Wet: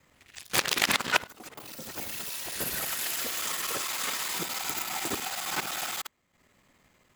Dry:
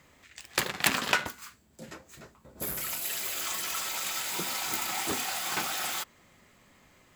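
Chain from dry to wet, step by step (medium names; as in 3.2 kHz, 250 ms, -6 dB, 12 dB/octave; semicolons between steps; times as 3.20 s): time reversed locally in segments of 51 ms; transient shaper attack +2 dB, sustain -10 dB; in parallel at -6.5 dB: word length cut 8-bit, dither none; on the sum: ever faster or slower copies 136 ms, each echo +6 st, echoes 2; trim -3.5 dB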